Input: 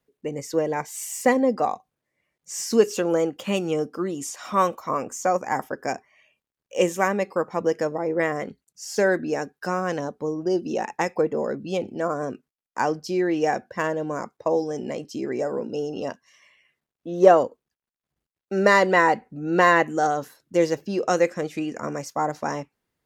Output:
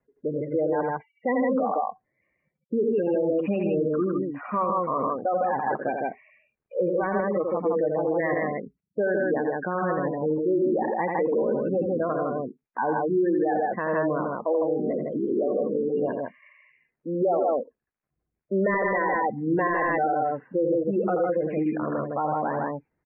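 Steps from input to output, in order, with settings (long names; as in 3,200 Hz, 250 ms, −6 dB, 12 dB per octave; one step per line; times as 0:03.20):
hard clipping −12.5 dBFS, distortion −14 dB
gate on every frequency bin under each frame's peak −15 dB strong
loudspeakers that aren't time-aligned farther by 29 metres −7 dB, 54 metres −3 dB
brickwall limiter −18 dBFS, peak gain reduction 11.5 dB
Butterworth low-pass 2,600 Hz 96 dB per octave
level +1.5 dB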